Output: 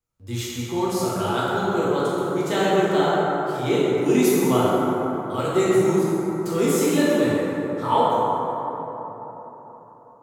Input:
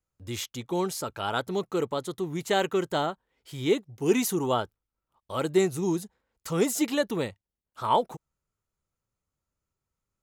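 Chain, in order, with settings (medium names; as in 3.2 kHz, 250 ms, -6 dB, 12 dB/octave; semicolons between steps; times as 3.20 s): plate-style reverb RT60 4.1 s, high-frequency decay 0.35×, DRR -9 dB; trim -2.5 dB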